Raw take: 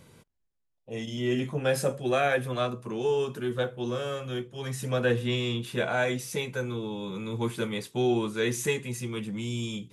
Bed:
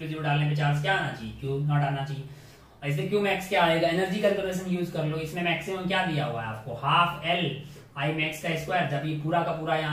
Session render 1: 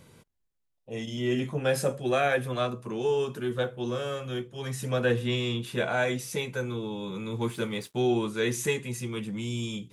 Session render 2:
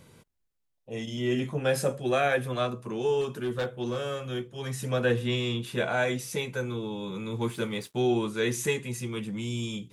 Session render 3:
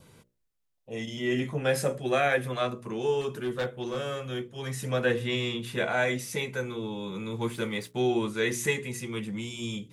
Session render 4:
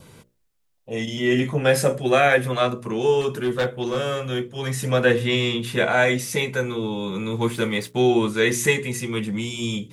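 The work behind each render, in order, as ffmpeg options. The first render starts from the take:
-filter_complex "[0:a]asettb=1/sr,asplit=3[a][b][c];[a]atrim=end=7.344[d];[b]atrim=start=7.34:end=8.01,asetpts=PTS-STARTPTS,afade=t=in:d=0.004:c=qsin,afade=t=out:st=0.666:d=0.004:c=qsin,aeval=exprs='sgn(val(0))*max(abs(val(0))-0.00133,0)':c=same[e];[c]atrim=start=8.006[f];[d][e]acrossfade=d=0.004:c1=hsin:c2=qsin[g];[g][f]acrossfade=d=0.004:c1=qsin:c2=hsin"
-filter_complex "[0:a]asettb=1/sr,asplit=3[a][b][c];[a]atrim=end=3.214[d];[b]atrim=start=3.21:end=3.97,asetpts=PTS-STARTPTS,afade=t=in:d=0.004:c=qsin,afade=t=out:st=0.756:d=0.004:c=qsin,volume=24.5dB,asoftclip=hard,volume=-24.5dB[e];[c]atrim=start=3.966[f];[d][e]acrossfade=d=0.004:c1=hsin:c2=qsin[g];[g][f]acrossfade=d=0.004:c1=qsin:c2=hsin"
-af "bandreject=f=60:t=h:w=6,bandreject=f=120:t=h:w=6,bandreject=f=180:t=h:w=6,bandreject=f=240:t=h:w=6,bandreject=f=300:t=h:w=6,bandreject=f=360:t=h:w=6,bandreject=f=420:t=h:w=6,bandreject=f=480:t=h:w=6,bandreject=f=540:t=h:w=6,bandreject=f=600:t=h:w=6,adynamicequalizer=threshold=0.00282:dfrequency=2000:dqfactor=4.9:tfrequency=2000:tqfactor=4.9:attack=5:release=100:ratio=0.375:range=3:mode=boostabove:tftype=bell"
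-af "volume=8dB"

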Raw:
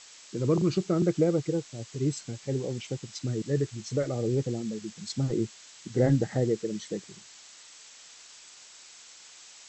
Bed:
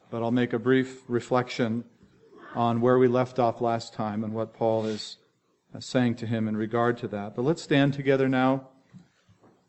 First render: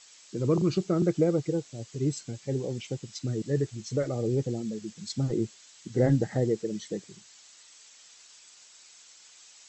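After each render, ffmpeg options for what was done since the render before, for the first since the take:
-af "afftdn=nr=6:nf=-51"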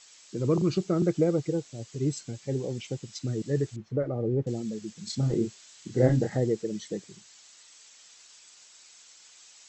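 -filter_complex "[0:a]asettb=1/sr,asplit=3[a][b][c];[a]atrim=end=3.764[d];[b]atrim=start=3.76:end=4.47,asetpts=PTS-STARTPTS,afade=t=in:d=0.004:c=qsin,afade=t=out:st=0.706:d=0.004:c=qsin,lowpass=1.4k[e];[c]atrim=start=4.466[f];[d][e]acrossfade=d=0.004:c1=hsin:c2=qsin[g];[g][f]acrossfade=d=0.004:c1=qsin:c2=hsin,asettb=1/sr,asplit=3[h][i][j];[h]atrim=end=5.044[k];[i]atrim=start=5.04:end=6.36,asetpts=PTS-STARTPTS,afade=t=in:d=0.004:c=qsin,afade=t=out:st=1.316:d=0.004:c=qsin,asplit=2[l][m];[m]adelay=31,volume=-4.5dB[n];[l][n]amix=inputs=2:normalize=0,atrim=end_sample=58212[o];[j]atrim=start=6.356[p];[k][o]acrossfade=d=0.004:c1=hsin:c2=qsin[q];[q][p]acrossfade=d=0.004:c1=qsin:c2=hsin"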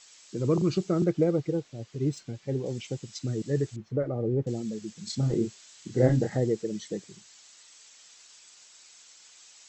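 -filter_complex "[0:a]asettb=1/sr,asplit=3[a][b][c];[a]atrim=end=1.044[d];[b]atrim=start=1.04:end=2.66,asetpts=PTS-STARTPTS,afade=t=in:d=0.004:c=qsin,afade=t=out:st=1.616:d=0.004:c=qsin,adynamicsmooth=sensitivity=5:basefreq=4.5k[e];[c]atrim=start=2.656[f];[d][e]acrossfade=d=0.004:c1=hsin:c2=qsin[g];[g][f]acrossfade=d=0.004:c1=qsin:c2=hsin"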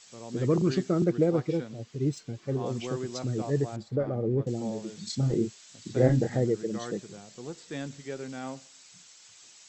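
-filter_complex "[1:a]volume=-15dB[a];[0:a][a]amix=inputs=2:normalize=0"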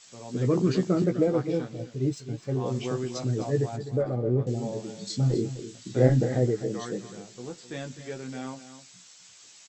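-filter_complex "[0:a]asplit=2[a][b];[b]adelay=16,volume=-5.5dB[c];[a][c]amix=inputs=2:normalize=0,aecho=1:1:255:0.237"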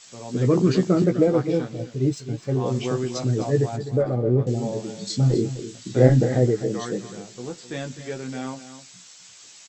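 -af "volume=5dB"

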